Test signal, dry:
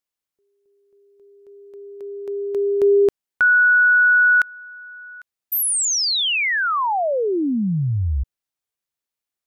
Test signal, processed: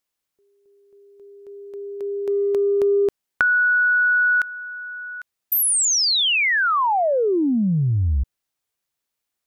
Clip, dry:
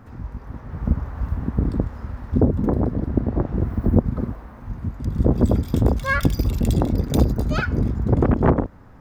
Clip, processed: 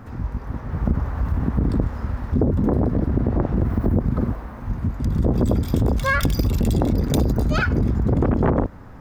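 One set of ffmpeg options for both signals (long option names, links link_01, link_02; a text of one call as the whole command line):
ffmpeg -i in.wav -af "acompressor=threshold=-26dB:ratio=4:attack=15:release=23:knee=1:detection=peak,volume=5.5dB" out.wav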